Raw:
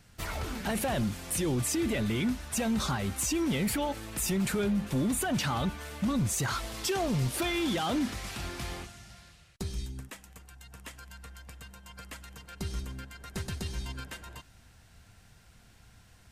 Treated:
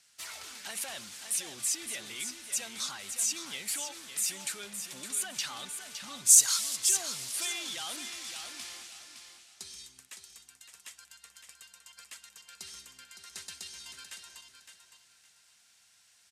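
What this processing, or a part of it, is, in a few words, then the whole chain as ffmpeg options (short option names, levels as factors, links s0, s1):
piezo pickup straight into a mixer: -filter_complex "[0:a]asplit=3[s0][s1][s2];[s0]afade=t=out:st=6.25:d=0.02[s3];[s1]bass=f=250:g=-2,treble=f=4000:g=14,afade=t=in:st=6.25:d=0.02,afade=t=out:st=6.75:d=0.02[s4];[s2]afade=t=in:st=6.75:d=0.02[s5];[s3][s4][s5]amix=inputs=3:normalize=0,lowpass=7900,aderivative,aecho=1:1:562|1124|1686:0.376|0.0977|0.0254,volume=1.88"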